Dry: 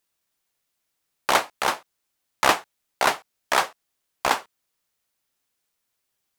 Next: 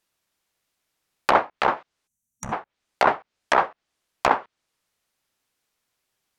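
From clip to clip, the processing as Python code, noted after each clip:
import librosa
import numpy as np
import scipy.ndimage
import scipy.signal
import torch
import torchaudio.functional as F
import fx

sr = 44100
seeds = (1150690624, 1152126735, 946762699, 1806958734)

y = fx.env_lowpass_down(x, sr, base_hz=1400.0, full_db=-20.0)
y = fx.spec_box(y, sr, start_s=2.07, length_s=0.45, low_hz=240.0, high_hz=5700.0, gain_db=-23)
y = fx.high_shelf(y, sr, hz=6400.0, db=-6.0)
y = y * 10.0 ** (4.0 / 20.0)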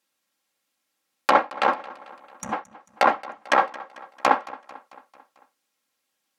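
y = scipy.signal.sosfilt(scipy.signal.butter(2, 140.0, 'highpass', fs=sr, output='sos'), x)
y = y + 0.59 * np.pad(y, (int(3.7 * sr / 1000.0), 0))[:len(y)]
y = fx.echo_feedback(y, sr, ms=222, feedback_pct=57, wet_db=-19.5)
y = y * 10.0 ** (-1.0 / 20.0)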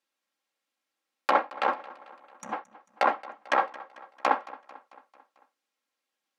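y = scipy.signal.sosfilt(scipy.signal.butter(2, 240.0, 'highpass', fs=sr, output='sos'), x)
y = fx.high_shelf(y, sr, hz=7000.0, db=-10.5)
y = y * 10.0 ** (-5.0 / 20.0)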